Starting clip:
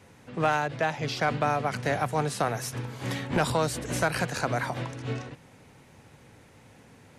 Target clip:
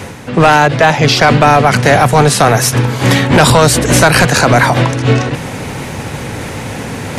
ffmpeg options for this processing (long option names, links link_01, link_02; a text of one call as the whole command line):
ffmpeg -i in.wav -af "areverse,acompressor=mode=upward:threshold=-34dB:ratio=2.5,areverse,apsyclip=24dB,volume=-1.5dB" out.wav